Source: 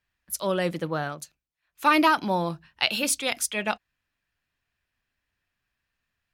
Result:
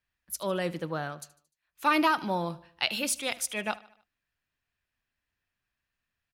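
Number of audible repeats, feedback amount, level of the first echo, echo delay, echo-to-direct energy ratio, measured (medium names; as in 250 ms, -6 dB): 3, 50%, -20.0 dB, 75 ms, -19.0 dB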